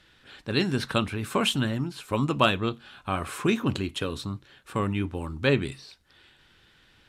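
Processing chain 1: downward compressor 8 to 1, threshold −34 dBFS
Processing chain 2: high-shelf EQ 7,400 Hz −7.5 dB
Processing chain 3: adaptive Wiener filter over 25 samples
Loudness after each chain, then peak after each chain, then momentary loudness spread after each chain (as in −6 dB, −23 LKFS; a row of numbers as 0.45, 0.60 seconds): −39.0, −28.0, −28.0 LKFS; −21.5, −7.5, −7.5 dBFS; 18, 13, 12 LU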